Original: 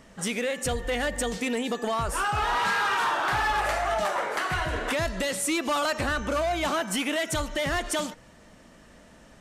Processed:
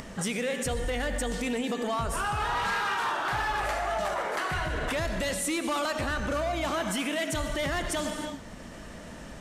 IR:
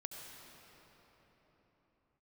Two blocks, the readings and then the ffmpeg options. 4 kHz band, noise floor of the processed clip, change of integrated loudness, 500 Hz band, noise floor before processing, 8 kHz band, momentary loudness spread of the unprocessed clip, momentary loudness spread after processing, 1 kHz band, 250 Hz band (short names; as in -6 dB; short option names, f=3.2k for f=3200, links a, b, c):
-3.0 dB, -43 dBFS, -3.0 dB, -2.0 dB, -53 dBFS, -2.5 dB, 4 LU, 8 LU, -3.5 dB, -1.0 dB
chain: -filter_complex "[0:a]asplit=2[a][b];[1:a]atrim=start_sample=2205,afade=t=out:st=0.37:d=0.01,atrim=end_sample=16758,lowshelf=f=330:g=5[c];[b][c]afir=irnorm=-1:irlink=0,volume=3.5dB[d];[a][d]amix=inputs=2:normalize=0,acompressor=mode=upward:threshold=-37dB:ratio=2.5,alimiter=limit=-22.5dB:level=0:latency=1:release=154"